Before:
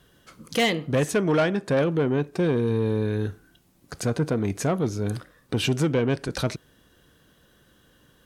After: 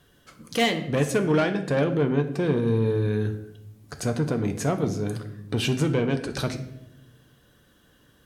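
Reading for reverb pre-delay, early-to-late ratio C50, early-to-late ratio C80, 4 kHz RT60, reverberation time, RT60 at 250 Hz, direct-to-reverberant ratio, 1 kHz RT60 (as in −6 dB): 7 ms, 11.5 dB, 14.0 dB, 0.60 s, 0.85 s, 1.4 s, 6.0 dB, 0.70 s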